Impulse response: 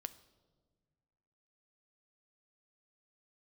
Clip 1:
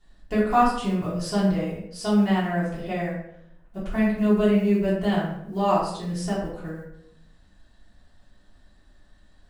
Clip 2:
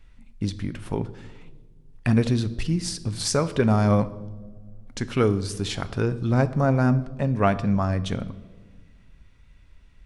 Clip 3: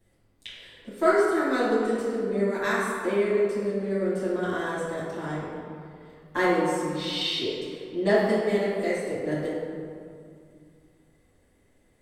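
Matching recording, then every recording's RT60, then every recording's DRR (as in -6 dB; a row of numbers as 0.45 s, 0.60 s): 2; 0.70 s, no single decay rate, 2.3 s; -9.5 dB, 12.0 dB, -10.0 dB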